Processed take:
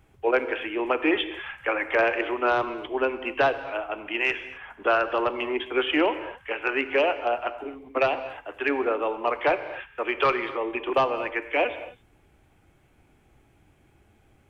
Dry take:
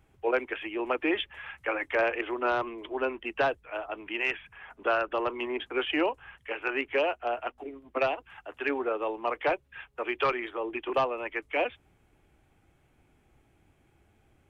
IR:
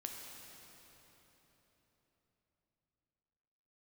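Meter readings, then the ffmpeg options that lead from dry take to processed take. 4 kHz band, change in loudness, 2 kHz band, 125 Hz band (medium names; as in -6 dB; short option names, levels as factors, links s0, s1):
+5.0 dB, +4.5 dB, +5.0 dB, +5.0 dB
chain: -filter_complex "[0:a]asplit=2[s0][s1];[1:a]atrim=start_sample=2205,afade=t=out:st=0.32:d=0.01,atrim=end_sample=14553[s2];[s1][s2]afir=irnorm=-1:irlink=0,volume=1.12[s3];[s0][s3]amix=inputs=2:normalize=0"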